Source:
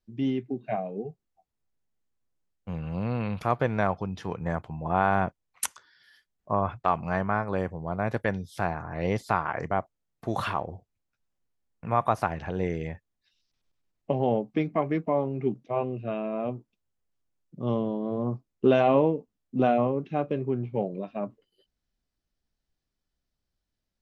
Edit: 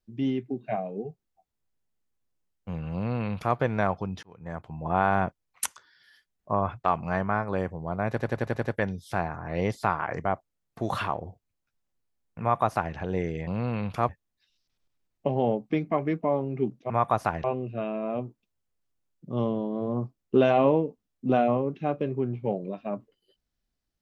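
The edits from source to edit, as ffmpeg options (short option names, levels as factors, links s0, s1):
-filter_complex "[0:a]asplit=12[s0][s1][s2][s3][s4][s5][s6][s7][s8][s9][s10][s11];[s0]atrim=end=4.23,asetpts=PTS-STARTPTS,afade=t=out:st=4.226:d=0.004:c=hsin[s12];[s1]atrim=start=4.23:end=8.192,asetpts=PTS-STARTPTS,afade=t=in:d=0.64[s13];[s2]atrim=start=8.098:end=8.192[s14];[s3]atrim=start=8.098:end=8.192[s15];[s4]atrim=start=8.098:end=8.192[s16];[s5]atrim=start=8.098:end=8.192[s17];[s6]atrim=start=8.098:end=8.192[s18];[s7]atrim=start=8.098:end=12.932[s19];[s8]atrim=start=2.938:end=3.562[s20];[s9]atrim=start=12.928:end=15.742[s21];[s10]atrim=start=11.868:end=12.412[s22];[s11]atrim=start=15.738[s23];[s12][s13]concat=n=2:v=0:a=1[s24];[s24][s14]acrossfade=d=0.004:c1=hsin:c2=hsin[s25];[s25][s15]acrossfade=d=0.004:c1=hsin:c2=hsin[s26];[s26][s16]acrossfade=d=0.004:c1=hsin:c2=hsin[s27];[s27][s17]acrossfade=d=0.004:c1=hsin:c2=hsin[s28];[s28][s18]acrossfade=d=0.004:c1=hsin:c2=hsin[s29];[s29][s19]acrossfade=d=0.004:c1=hsin:c2=hsin[s30];[s30][s20]acrossfade=d=0.004:c1=hsin:c2=hsin[s31];[s31][s21]acrossfade=d=0.004:c1=hsin:c2=hsin[s32];[s32][s22]acrossfade=d=0.004:c1=hsin:c2=hsin[s33];[s33][s23]acrossfade=d=0.004:c1=hsin:c2=hsin"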